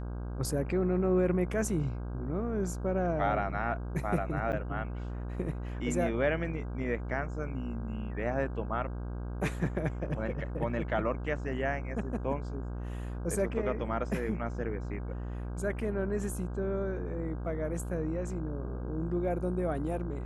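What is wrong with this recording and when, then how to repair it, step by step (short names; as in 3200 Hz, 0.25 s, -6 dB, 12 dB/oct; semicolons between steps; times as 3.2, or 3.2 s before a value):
buzz 60 Hz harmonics 27 -37 dBFS
4.52–4.53 gap 9.2 ms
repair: de-hum 60 Hz, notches 27; interpolate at 4.52, 9.2 ms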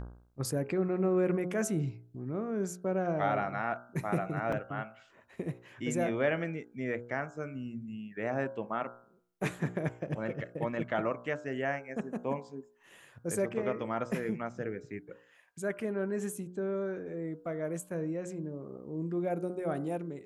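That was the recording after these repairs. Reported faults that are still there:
none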